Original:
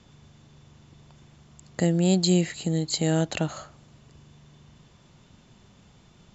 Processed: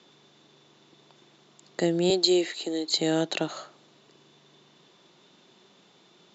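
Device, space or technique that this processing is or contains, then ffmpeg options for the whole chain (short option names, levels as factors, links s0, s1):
television speaker: -filter_complex "[0:a]highpass=f=210:w=0.5412,highpass=f=210:w=1.3066,equalizer=f=230:t=q:w=4:g=-7,equalizer=f=370:t=q:w=4:g=5,equalizer=f=3800:t=q:w=4:g=7,lowpass=f=6800:w=0.5412,lowpass=f=6800:w=1.3066,asettb=1/sr,asplit=3[s0][s1][s2];[s0]atrim=end=2.104[s3];[s1]atrim=start=2.1:end=2.9,asetpts=PTS-STARTPTS,afade=t=in:d=0.004:c=qsin,afade=t=out:st=0.796:d=0.004:c=qsin,highpass=f=260:w=0.5412,highpass=f=260:w=1.3066[s4];[s2]atrim=start=2.896[s5];[s3][s4]acrossfade=d=0.004:c1=hsin:c2=qsin[s6];[s6][s5]acrossfade=d=0.004:c1=qsin:c2=hsin"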